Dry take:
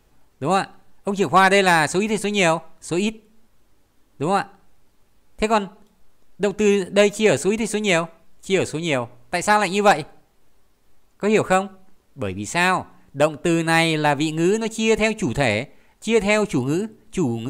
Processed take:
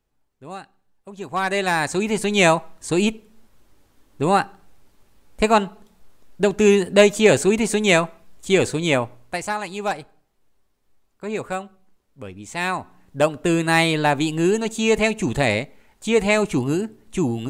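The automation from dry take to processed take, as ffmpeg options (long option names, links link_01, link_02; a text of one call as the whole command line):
ffmpeg -i in.wav -af "volume=12dB,afade=type=in:start_time=1.12:duration=0.68:silence=0.251189,afade=type=in:start_time=1.8:duration=0.66:silence=0.473151,afade=type=out:start_time=9:duration=0.53:silence=0.251189,afade=type=in:start_time=12.42:duration=0.88:silence=0.334965" out.wav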